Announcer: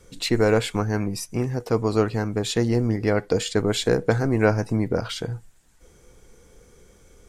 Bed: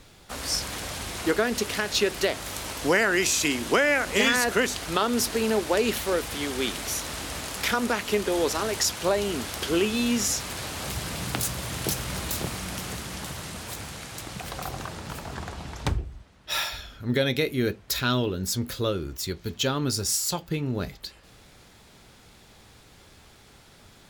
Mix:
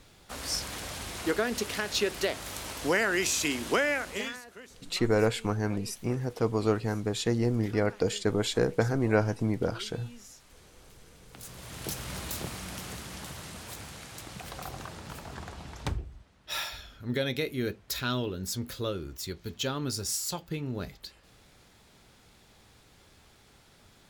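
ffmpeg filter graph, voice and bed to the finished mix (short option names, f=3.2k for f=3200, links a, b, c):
-filter_complex "[0:a]adelay=4700,volume=-5.5dB[a];[1:a]volume=14.5dB,afade=t=out:st=3.79:d=0.63:silence=0.0944061,afade=t=in:st=11.3:d=0.78:silence=0.112202[b];[a][b]amix=inputs=2:normalize=0"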